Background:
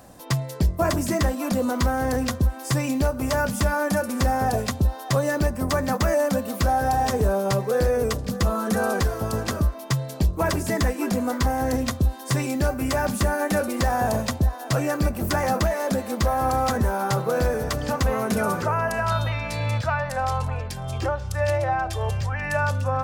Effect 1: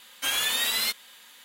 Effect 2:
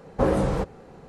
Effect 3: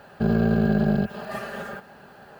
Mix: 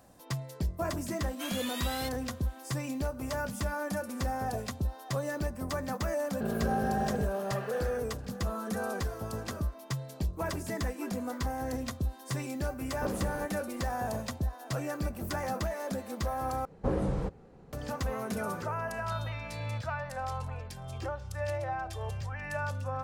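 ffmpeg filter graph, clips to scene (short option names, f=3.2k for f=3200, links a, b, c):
-filter_complex "[2:a]asplit=2[a][b];[0:a]volume=-11dB[c];[3:a]bass=f=250:g=-7,treble=f=4k:g=-9[d];[b]lowshelf=f=310:g=7.5[e];[c]asplit=2[f][g];[f]atrim=end=16.654[h];[e]atrim=end=1.08,asetpts=PTS-STARTPTS,volume=-12dB[i];[g]atrim=start=17.726[j];[1:a]atrim=end=1.44,asetpts=PTS-STARTPTS,volume=-13.5dB,afade=t=in:d=0.004:c=hsin,afade=t=out:st=1.436:d=0.004:c=hsin,adelay=1170[k];[d]atrim=end=2.39,asetpts=PTS-STARTPTS,volume=-8dB,afade=t=in:d=0.004:c=hsin,afade=t=out:st=2.386:d=0.004:c=hsin,adelay=6200[l];[a]atrim=end=1.08,asetpts=PTS-STARTPTS,volume=-15dB,afade=t=in:d=0.004:c=hsin,afade=t=out:st=1.076:d=0.004:c=hsin,adelay=12820[m];[h][i]acrossfade=d=0.004:c1=hsin:c2=hsin[n];[n][j]acrossfade=d=0.004:c1=hsin:c2=hsin[o];[o][k][l][m]amix=inputs=4:normalize=0"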